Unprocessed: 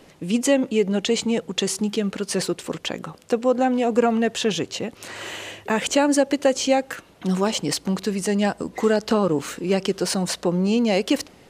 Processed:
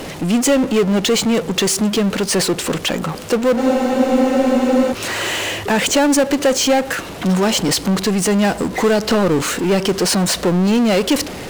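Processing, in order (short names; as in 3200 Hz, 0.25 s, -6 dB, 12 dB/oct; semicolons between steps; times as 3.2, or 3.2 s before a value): power-law curve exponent 0.5; spectral freeze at 3.6, 1.32 s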